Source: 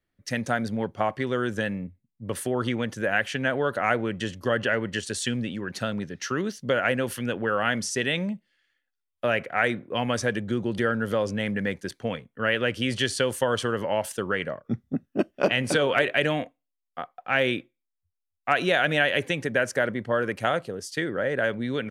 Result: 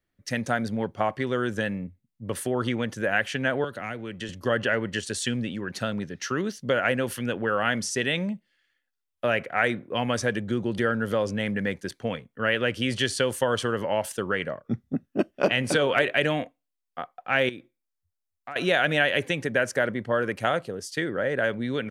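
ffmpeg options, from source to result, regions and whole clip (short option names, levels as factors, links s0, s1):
-filter_complex "[0:a]asettb=1/sr,asplit=3[s0][s1][s2];[s0]atrim=end=3.644[s3];[s1]atrim=start=3.64:end=4.29,asetpts=PTS-STARTPTS,afade=t=in:d=0.004:c=qsin,afade=t=out:st=0.646:d=0.004:c=qsin,bass=f=250:g=-1,treble=f=4000:g=-3,acrossover=split=310|2400[s4][s5][s6];[s4]acompressor=threshold=0.0141:ratio=4[s7];[s5]acompressor=threshold=0.0141:ratio=4[s8];[s6]acompressor=threshold=0.0126:ratio=4[s9];[s7][s8][s9]amix=inputs=3:normalize=0[s10];[s2]atrim=start=4.286[s11];[s3][s10]acrossfade=d=0.004:c1=hsin:c2=qsin[s12];[s12][s11]acrossfade=d=0.004:c1=qsin:c2=hsin,asettb=1/sr,asplit=3[s13][s14][s15];[s13]atrim=end=17.494[s16];[s14]atrim=start=17.49:end=18.56,asetpts=PTS-STARTPTS,afade=t=in:d=0.004:c=qsin,afade=t=out:st=1.066:d=0.004:c=qsin,equalizer=f=2800:t=o:w=0.5:g=-7.5,acompressor=threshold=0.01:ratio=2.5:attack=3.2:release=140:knee=1:detection=peak[s17];[s15]atrim=start=18.556[s18];[s16][s17]acrossfade=d=0.004:c1=hsin:c2=qsin[s19];[s19][s18]acrossfade=d=0.004:c1=qsin:c2=hsin"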